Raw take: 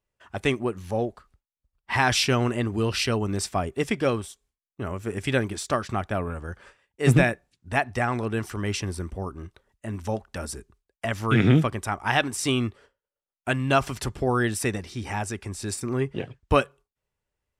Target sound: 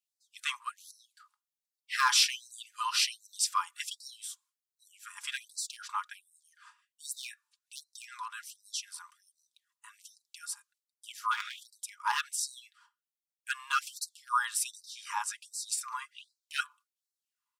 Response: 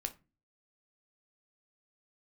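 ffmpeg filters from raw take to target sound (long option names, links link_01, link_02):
-af "aecho=1:1:4.9:0.5,aeval=exprs='clip(val(0),-1,0.211)':channel_layout=same,equalizer=frequency=125:width_type=o:width=1:gain=11,equalizer=frequency=250:width_type=o:width=1:gain=12,equalizer=frequency=500:width_type=o:width=1:gain=-6,equalizer=frequency=1000:width_type=o:width=1:gain=7,equalizer=frequency=2000:width_type=o:width=1:gain=-10,dynaudnorm=framelen=360:gausssize=13:maxgain=11.5dB,afftfilt=real='re*gte(b*sr/1024,840*pow(3900/840,0.5+0.5*sin(2*PI*1.3*pts/sr)))':imag='im*gte(b*sr/1024,840*pow(3900/840,0.5+0.5*sin(2*PI*1.3*pts/sr)))':win_size=1024:overlap=0.75"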